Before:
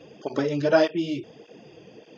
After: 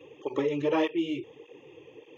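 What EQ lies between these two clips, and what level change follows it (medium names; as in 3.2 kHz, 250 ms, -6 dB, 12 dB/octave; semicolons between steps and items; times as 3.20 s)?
high-pass 80 Hz; static phaser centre 1 kHz, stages 8; 0.0 dB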